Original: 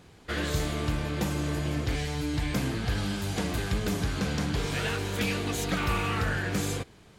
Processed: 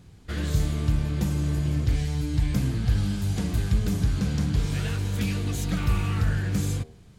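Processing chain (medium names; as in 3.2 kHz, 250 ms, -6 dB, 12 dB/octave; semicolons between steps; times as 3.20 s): tone controls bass +14 dB, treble +5 dB; de-hum 78.2 Hz, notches 14; trim -6 dB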